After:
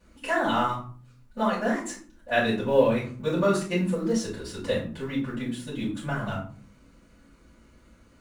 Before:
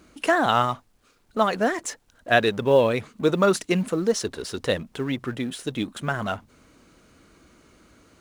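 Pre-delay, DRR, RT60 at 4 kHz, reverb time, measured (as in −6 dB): 3 ms, −10.5 dB, 0.30 s, 0.50 s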